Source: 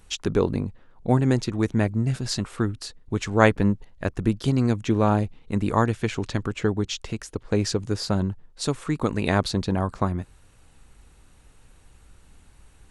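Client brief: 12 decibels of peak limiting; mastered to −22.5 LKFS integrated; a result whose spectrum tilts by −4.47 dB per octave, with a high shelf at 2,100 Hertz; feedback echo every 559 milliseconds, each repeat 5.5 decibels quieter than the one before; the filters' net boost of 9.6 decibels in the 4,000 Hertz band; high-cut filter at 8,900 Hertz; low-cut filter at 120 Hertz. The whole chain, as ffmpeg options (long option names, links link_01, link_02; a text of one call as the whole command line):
ffmpeg -i in.wav -af "highpass=120,lowpass=8900,highshelf=frequency=2100:gain=4.5,equalizer=frequency=4000:width_type=o:gain=7.5,alimiter=limit=-11.5dB:level=0:latency=1,aecho=1:1:559|1118|1677|2236|2795|3354|3913:0.531|0.281|0.149|0.079|0.0419|0.0222|0.0118,volume=2dB" out.wav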